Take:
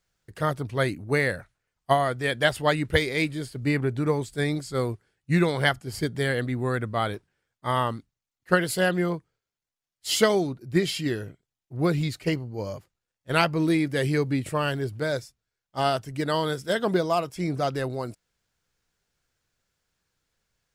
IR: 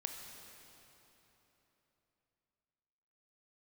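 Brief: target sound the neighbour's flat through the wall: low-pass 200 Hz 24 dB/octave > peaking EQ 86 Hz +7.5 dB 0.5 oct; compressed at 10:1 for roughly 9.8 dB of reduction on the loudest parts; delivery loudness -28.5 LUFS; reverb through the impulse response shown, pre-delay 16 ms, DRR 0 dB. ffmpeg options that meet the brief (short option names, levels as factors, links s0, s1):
-filter_complex "[0:a]acompressor=threshold=0.0501:ratio=10,asplit=2[s0][s1];[1:a]atrim=start_sample=2205,adelay=16[s2];[s1][s2]afir=irnorm=-1:irlink=0,volume=1.12[s3];[s0][s3]amix=inputs=2:normalize=0,lowpass=f=200:w=0.5412,lowpass=f=200:w=1.3066,equalizer=f=86:t=o:w=0.5:g=7.5,volume=2"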